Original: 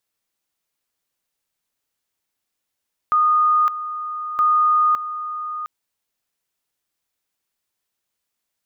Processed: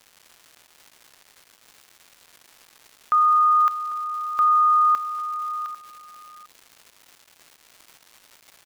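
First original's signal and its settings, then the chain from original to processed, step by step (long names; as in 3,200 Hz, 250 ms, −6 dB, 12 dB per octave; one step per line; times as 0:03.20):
tone at two levels in turn 1,230 Hz −13 dBFS, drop 12 dB, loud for 0.56 s, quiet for 0.71 s, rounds 2
surface crackle 440 per second −37 dBFS
low-shelf EQ 430 Hz −6.5 dB
single-tap delay 797 ms −16.5 dB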